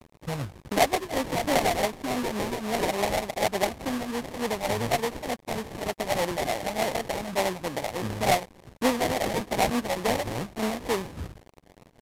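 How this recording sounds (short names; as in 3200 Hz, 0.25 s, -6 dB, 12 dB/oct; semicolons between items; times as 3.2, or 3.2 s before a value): a quantiser's noise floor 8-bit, dither none; phasing stages 8, 3.4 Hz, lowest notch 340–3500 Hz; aliases and images of a low sample rate 1400 Hz, jitter 20%; Vorbis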